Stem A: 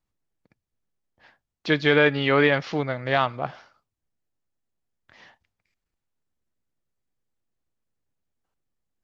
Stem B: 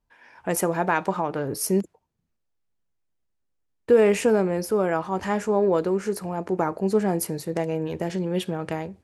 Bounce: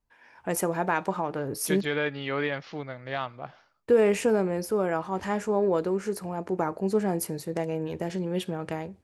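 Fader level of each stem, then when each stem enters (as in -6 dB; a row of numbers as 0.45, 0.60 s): -10.0, -3.5 dB; 0.00, 0.00 s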